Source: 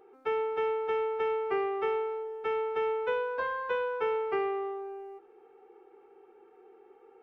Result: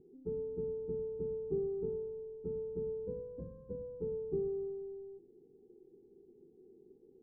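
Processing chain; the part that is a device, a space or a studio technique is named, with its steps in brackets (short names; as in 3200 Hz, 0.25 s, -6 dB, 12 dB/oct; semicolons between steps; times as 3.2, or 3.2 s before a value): the neighbour's flat through the wall (LPF 250 Hz 24 dB/oct; bell 160 Hz +5.5 dB 0.86 oct); gain +11.5 dB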